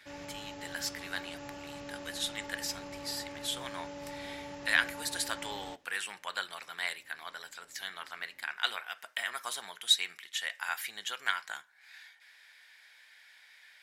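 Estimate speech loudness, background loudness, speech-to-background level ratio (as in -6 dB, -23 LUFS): -35.5 LUFS, -45.0 LUFS, 9.5 dB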